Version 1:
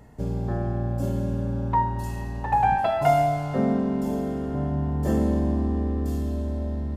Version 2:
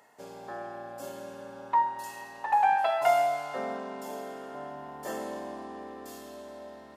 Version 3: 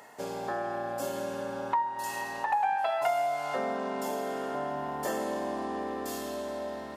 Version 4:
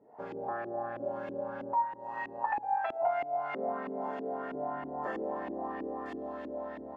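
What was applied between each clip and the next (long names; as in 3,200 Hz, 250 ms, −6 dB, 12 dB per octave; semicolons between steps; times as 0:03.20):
high-pass filter 740 Hz 12 dB per octave
downward compressor 3 to 1, threshold −39 dBFS, peak gain reduction 15 dB; level +9 dB
delay that swaps between a low-pass and a high-pass 111 ms, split 820 Hz, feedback 80%, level −14 dB; auto-filter low-pass saw up 3.1 Hz 300–2,500 Hz; level −6.5 dB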